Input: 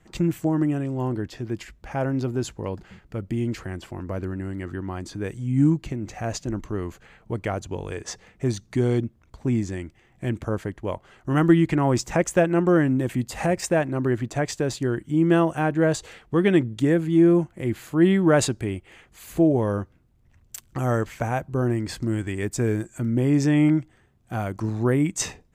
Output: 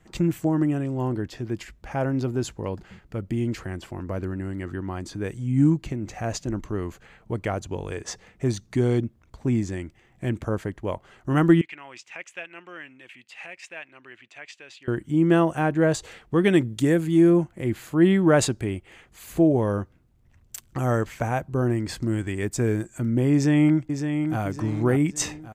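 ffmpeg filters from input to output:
ffmpeg -i in.wav -filter_complex "[0:a]asettb=1/sr,asplit=3[link_01][link_02][link_03];[link_01]atrim=end=11.614[link_04];[link_02]atrim=start=11.61:end=14.88,asetpts=PTS-STARTPTS,afade=type=in:duration=0.004:curve=qsin,afade=type=out:start_time=3.266:duration=0.004:curve=qsin,bandpass=frequency=2600:width_type=q:width=3.2[link_05];[link_03]atrim=start=14.876[link_06];[link_04][link_05]acrossfade=duration=0.004:curve1=hsin:curve2=qsin[link_07];[link_07][link_06]acrossfade=duration=0.004:curve1=qsin:curve2=hsin,asettb=1/sr,asplit=3[link_08][link_09][link_10];[link_08]atrim=end=16.444[link_11];[link_09]atrim=start=16.44:end=17.3,asetpts=PTS-STARTPTS,afade=type=in:duration=0.004:curve=qsin,afade=type=out:start_time=0.856:duration=0.004:curve=qsin,aemphasis=mode=production:type=cd[link_12];[link_10]atrim=start=17.296[link_13];[link_11][link_12]acrossfade=duration=0.004:curve1=hsin:curve2=qsin[link_14];[link_14][link_13]acrossfade=duration=0.004:curve1=qsin:curve2=hsin,asplit=2[link_15][link_16];[link_16]afade=type=in:start_time=23.33:duration=0.01,afade=type=out:start_time=24.4:duration=0.01,aecho=0:1:560|1120|1680|2240|2800:0.446684|0.178673|0.0714694|0.0285877|0.0114351[link_17];[link_15][link_17]amix=inputs=2:normalize=0" out.wav

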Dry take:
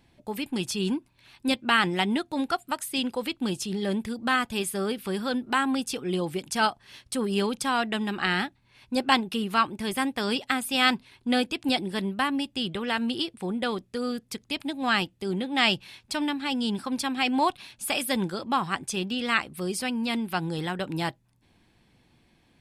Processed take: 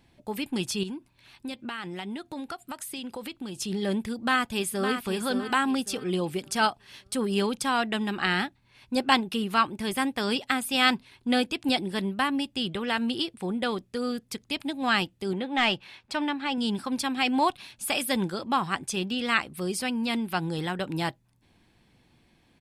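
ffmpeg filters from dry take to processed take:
ffmpeg -i in.wav -filter_complex "[0:a]asettb=1/sr,asplit=3[link_01][link_02][link_03];[link_01]atrim=end=0.834[link_04];[link_02]atrim=start=0.83:end=3.58,asetpts=PTS-STARTPTS,afade=type=in:duration=0.004:curve=qsin,afade=type=out:start_time=2.746:duration=0.004:curve=qsin,acompressor=threshold=-33dB:ratio=5:attack=3.2:release=140:knee=1:detection=peak[link_05];[link_03]atrim=start=3.576[link_06];[link_04][link_05]acrossfade=duration=0.004:curve1=hsin:curve2=qsin[link_07];[link_07][link_06]acrossfade=duration=0.004:curve1=qsin:curve2=hsin,asplit=2[link_08][link_09];[link_09]afade=type=in:start_time=4.16:duration=0.01,afade=type=out:start_time=4.91:duration=0.01,aecho=0:1:560|1120|1680|2240:0.446684|0.134005|0.0402015|0.0120605[link_10];[link_08][link_10]amix=inputs=2:normalize=0,asettb=1/sr,asplit=3[link_11][link_12][link_13];[link_11]atrim=end=15.334[link_14];[link_12]atrim=start=15.33:end=16.58,asetpts=PTS-STARTPTS,afade=type=in:duration=0.004:curve=qsin,afade=type=out:start_time=1.246:duration=0.004:curve=qsin,asplit=2[link_15][link_16];[link_16]highpass=frequency=720:poles=1,volume=9dB,asoftclip=type=tanh:threshold=-7dB[link_17];[link_15][link_17]amix=inputs=2:normalize=0,lowpass=frequency=1600:poles=1,volume=-6dB[link_18];[link_13]atrim=start=16.576[link_19];[link_14][link_18]acrossfade=duration=0.004:curve1=hsin:curve2=qsin[link_20];[link_20][link_19]acrossfade=duration=0.004:curve1=qsin:curve2=hsin" out.wav

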